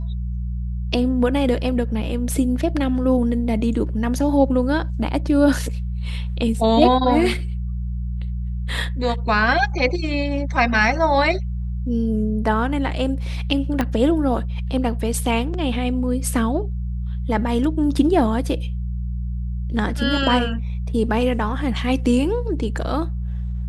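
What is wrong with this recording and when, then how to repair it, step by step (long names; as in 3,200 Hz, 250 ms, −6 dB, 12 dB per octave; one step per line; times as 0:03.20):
mains hum 60 Hz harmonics 3 −25 dBFS
0:13.81: click −8 dBFS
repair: click removal
hum removal 60 Hz, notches 3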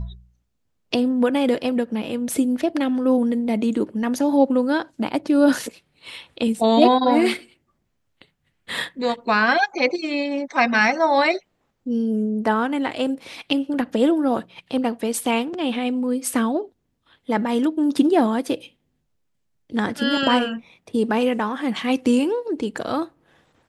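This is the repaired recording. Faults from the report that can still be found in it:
0:13.81: click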